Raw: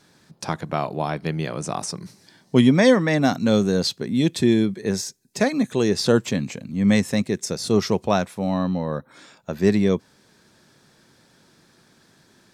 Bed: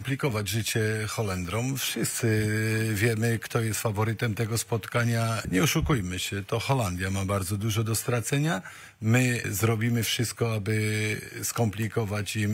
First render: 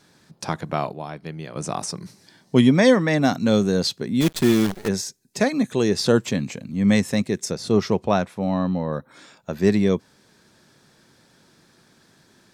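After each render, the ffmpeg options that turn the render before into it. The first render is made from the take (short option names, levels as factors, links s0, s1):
-filter_complex "[0:a]asplit=3[s0][s1][s2];[s0]afade=t=out:st=4.2:d=0.02[s3];[s1]acrusher=bits=5:dc=4:mix=0:aa=0.000001,afade=t=in:st=4.2:d=0.02,afade=t=out:st=4.87:d=0.02[s4];[s2]afade=t=in:st=4.87:d=0.02[s5];[s3][s4][s5]amix=inputs=3:normalize=0,asettb=1/sr,asplit=3[s6][s7][s8];[s6]atrim=end=7.514[s9];[s7]atrim=start=7.51:end=8.93,asetpts=PTS-STARTPTS,afade=t=in:d=0.004:c=qsin,afade=t=out:st=1.416:d=0.004:c=qsin,aemphasis=mode=reproduction:type=cd[s10];[s8]atrim=start=8.926[s11];[s9][s10]acrossfade=d=0.004:c1=hsin:c2=qsin[s12];[s12][s11]acrossfade=d=0.004:c1=qsin:c2=hsin,asplit=3[s13][s14][s15];[s13]atrim=end=0.922[s16];[s14]atrim=start=0.918:end=1.562,asetpts=PTS-STARTPTS,volume=0.398[s17];[s15]atrim=start=1.558[s18];[s16][s17]acrossfade=d=0.004:c1=hsin:c2=hsin[s19];[s19][s18]acrossfade=d=0.004:c1=hsin:c2=hsin"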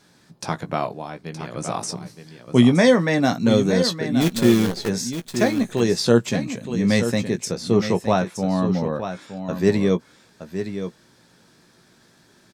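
-filter_complex "[0:a]asplit=2[s0][s1];[s1]adelay=17,volume=0.376[s2];[s0][s2]amix=inputs=2:normalize=0,aecho=1:1:919:0.335"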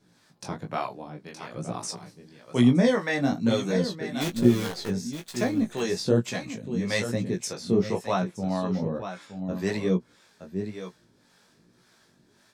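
-filter_complex "[0:a]acrossover=split=530[s0][s1];[s0]aeval=exprs='val(0)*(1-0.7/2+0.7/2*cos(2*PI*1.8*n/s))':c=same[s2];[s1]aeval=exprs='val(0)*(1-0.7/2-0.7/2*cos(2*PI*1.8*n/s))':c=same[s3];[s2][s3]amix=inputs=2:normalize=0,flanger=delay=16:depth=6:speed=1.1"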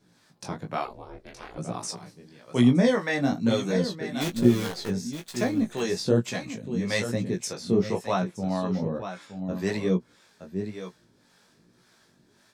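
-filter_complex "[0:a]asettb=1/sr,asplit=3[s0][s1][s2];[s0]atrim=end=0.854[s3];[s1]atrim=start=0.85:end=1.58,asetpts=PTS-STARTPTS,afade=t=in:d=0.004:c=qsin,afade=t=out:st=0.726:d=0.004:c=qsin,aeval=exprs='val(0)*sin(2*PI*190*n/s)':c=same[s4];[s2]atrim=start=1.576[s5];[s3][s4]acrossfade=d=0.004:c1=hsin:c2=qsin[s6];[s6][s5]acrossfade=d=0.004:c1=qsin:c2=hsin"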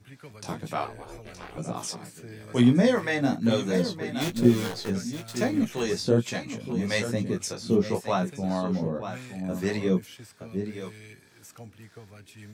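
-filter_complex "[1:a]volume=0.106[s0];[0:a][s0]amix=inputs=2:normalize=0"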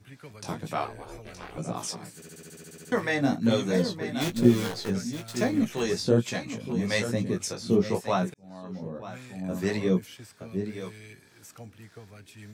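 -filter_complex "[0:a]asplit=13[s0][s1][s2][s3][s4][s5][s6][s7][s8][s9][s10][s11][s12];[s0]atrim=end=2.222[s13];[s1]atrim=start=2.148:end=2.222[s14];[s2]atrim=start=2.148:end=2.222[s15];[s3]atrim=start=2.148:end=2.222[s16];[s4]atrim=start=2.148:end=2.222[s17];[s5]atrim=start=2.148:end=2.222[s18];[s6]atrim=start=2.148:end=2.222[s19];[s7]atrim=start=2.148:end=2.222[s20];[s8]atrim=start=2.148:end=2.222[s21];[s9]atrim=start=2.148:end=2.222[s22];[s10]atrim=start=2.148:end=2.222[s23];[s11]atrim=start=2.918:end=8.34,asetpts=PTS-STARTPTS,afade=t=out:st=5.418:d=0.004:c=hsin[s24];[s12]atrim=start=8.34,asetpts=PTS-STARTPTS,afade=t=in:d=1.31[s25];[s13][s14]acrossfade=d=0.004:c1=hsin:c2=hsin[s26];[s26][s15]acrossfade=d=0.004:c1=hsin:c2=hsin[s27];[s27][s16]acrossfade=d=0.004:c1=hsin:c2=hsin[s28];[s28][s17]acrossfade=d=0.004:c1=hsin:c2=hsin[s29];[s29][s18]acrossfade=d=0.004:c1=hsin:c2=hsin[s30];[s30][s19]acrossfade=d=0.004:c1=hsin:c2=hsin[s31];[s31][s20]acrossfade=d=0.004:c1=hsin:c2=hsin[s32];[s32][s21]acrossfade=d=0.004:c1=hsin:c2=hsin[s33];[s33][s22]acrossfade=d=0.004:c1=hsin:c2=hsin[s34];[s34][s23]acrossfade=d=0.004:c1=hsin:c2=hsin[s35];[s24][s25]concat=n=2:v=0:a=1[s36];[s35][s36]acrossfade=d=0.004:c1=hsin:c2=hsin"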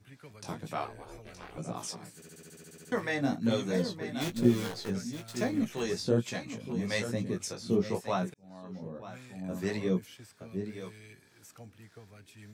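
-af "volume=0.562"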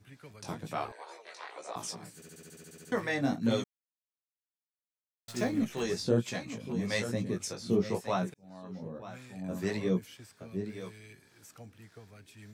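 -filter_complex "[0:a]asettb=1/sr,asplit=3[s0][s1][s2];[s0]atrim=end=0.924[s3];[s1]atrim=start=0.92:end=1.76,asetpts=PTS-STARTPTS,afade=t=in:d=0.004:c=qsin,afade=t=out:st=0.836:d=0.004:c=qsin,highpass=f=450:w=0.5412,highpass=f=450:w=1.3066,equalizer=f=970:t=q:w=4:g=7,equalizer=f=1900:t=q:w=4:g=8,equalizer=f=4000:t=q:w=4:g=9,lowpass=f=9800:w=0.5412,lowpass=f=9800:w=1.3066[s4];[s2]atrim=start=1.756[s5];[s3][s4]acrossfade=d=0.004:c1=hsin:c2=qsin[s6];[s6][s5]acrossfade=d=0.004:c1=qsin:c2=hsin,asplit=3[s7][s8][s9];[s7]atrim=end=3.64,asetpts=PTS-STARTPTS,afade=t=out:st=3.636:d=0.004:c=hsin[s10];[s8]atrim=start=3.64:end=5.28,asetpts=PTS-STARTPTS,volume=0[s11];[s9]atrim=start=5.28,asetpts=PTS-STARTPTS,afade=t=in:d=0.004:c=hsin[s12];[s10][s11][s12]concat=n=3:v=0:a=1"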